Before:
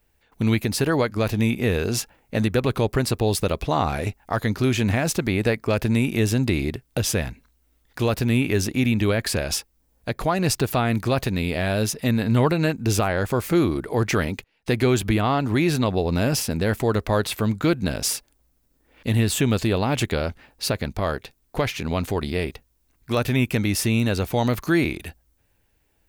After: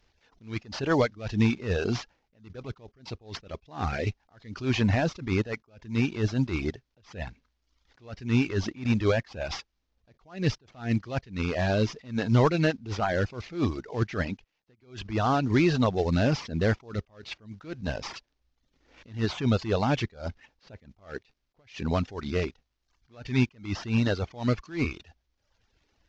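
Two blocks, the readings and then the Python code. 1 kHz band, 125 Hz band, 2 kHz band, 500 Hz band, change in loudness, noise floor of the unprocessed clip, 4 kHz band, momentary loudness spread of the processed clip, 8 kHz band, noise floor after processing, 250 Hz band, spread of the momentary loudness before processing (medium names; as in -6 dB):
-6.0 dB, -6.0 dB, -6.5 dB, -6.5 dB, -5.5 dB, -66 dBFS, -8.5 dB, 17 LU, -18.5 dB, -77 dBFS, -6.0 dB, 6 LU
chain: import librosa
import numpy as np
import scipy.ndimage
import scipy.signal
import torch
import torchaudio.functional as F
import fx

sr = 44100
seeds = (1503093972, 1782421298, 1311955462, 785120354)

y = fx.cvsd(x, sr, bps=32000)
y = fx.dereverb_blind(y, sr, rt60_s=0.73)
y = fx.attack_slew(y, sr, db_per_s=170.0)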